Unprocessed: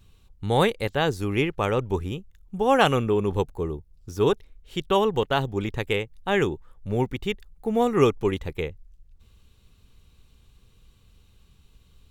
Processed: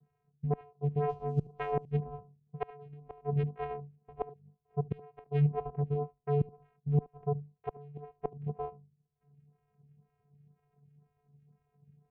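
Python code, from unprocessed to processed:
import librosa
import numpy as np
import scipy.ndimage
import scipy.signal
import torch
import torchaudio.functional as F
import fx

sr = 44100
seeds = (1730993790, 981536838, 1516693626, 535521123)

p1 = fx.envelope_flatten(x, sr, power=0.6, at=(3.5, 4.11), fade=0.02)
p2 = scipy.signal.sosfilt(scipy.signal.butter(12, 1200.0, 'lowpass', fs=sr, output='sos'), p1)
p3 = fx.rider(p2, sr, range_db=4, speed_s=2.0)
p4 = p2 + (p3 * librosa.db_to_amplitude(-2.5))
p5 = fx.hum_notches(p4, sr, base_hz=50, count=6)
p6 = fx.mod_noise(p5, sr, seeds[0], snr_db=24, at=(1.08, 1.91))
p7 = fx.vocoder(p6, sr, bands=4, carrier='square', carrier_hz=145.0)
p8 = fx.gate_flip(p7, sr, shuts_db=-10.0, range_db=-26)
p9 = p8 + 10.0 ** (-22.0 / 20.0) * np.pad(p8, (int(73 * sr / 1000.0), 0))[:len(p8)]
p10 = fx.stagger_phaser(p9, sr, hz=2.0)
y = p10 * librosa.db_to_amplitude(-5.0)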